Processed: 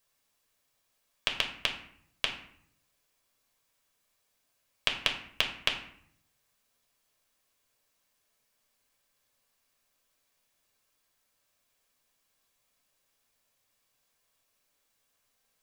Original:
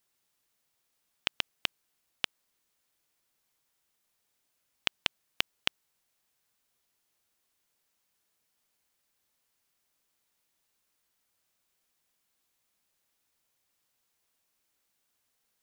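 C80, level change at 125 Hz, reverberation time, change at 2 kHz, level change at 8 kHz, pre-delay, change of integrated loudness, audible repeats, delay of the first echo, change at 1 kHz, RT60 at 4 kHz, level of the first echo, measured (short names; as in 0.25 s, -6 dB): 11.5 dB, +4.0 dB, 0.65 s, +3.5 dB, +2.0 dB, 4 ms, +3.0 dB, none, none, +4.0 dB, 0.45 s, none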